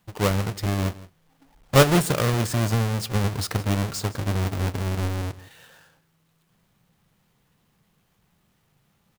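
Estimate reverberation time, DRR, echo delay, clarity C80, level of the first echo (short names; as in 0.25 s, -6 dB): none, none, 0.164 s, none, -18.5 dB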